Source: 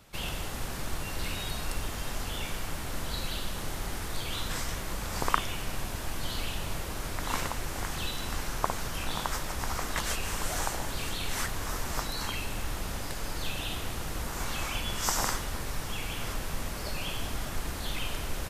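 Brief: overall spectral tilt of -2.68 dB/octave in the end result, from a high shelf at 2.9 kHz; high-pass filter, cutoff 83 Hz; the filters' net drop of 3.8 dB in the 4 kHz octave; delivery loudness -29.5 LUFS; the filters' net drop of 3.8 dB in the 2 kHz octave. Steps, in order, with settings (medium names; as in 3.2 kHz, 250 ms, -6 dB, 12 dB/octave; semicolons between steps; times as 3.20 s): high-pass 83 Hz; peaking EQ 2 kHz -5 dB; treble shelf 2.9 kHz +5.5 dB; peaking EQ 4 kHz -8 dB; trim +5 dB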